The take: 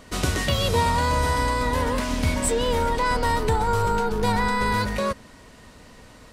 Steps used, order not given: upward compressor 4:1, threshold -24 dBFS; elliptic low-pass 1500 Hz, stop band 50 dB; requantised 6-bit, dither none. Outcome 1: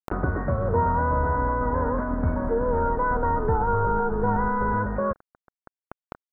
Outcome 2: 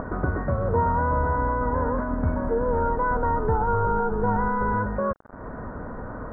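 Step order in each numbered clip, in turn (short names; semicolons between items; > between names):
requantised > elliptic low-pass > upward compressor; upward compressor > requantised > elliptic low-pass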